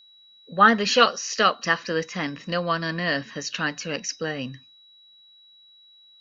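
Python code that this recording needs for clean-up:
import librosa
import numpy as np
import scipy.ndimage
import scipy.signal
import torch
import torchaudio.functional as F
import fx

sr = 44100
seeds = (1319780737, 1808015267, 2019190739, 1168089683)

y = fx.notch(x, sr, hz=3900.0, q=30.0)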